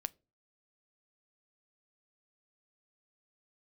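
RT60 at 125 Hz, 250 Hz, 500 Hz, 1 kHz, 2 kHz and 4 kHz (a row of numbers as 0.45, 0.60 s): 0.50, 0.45, 0.40, 0.25, 0.20, 0.20 s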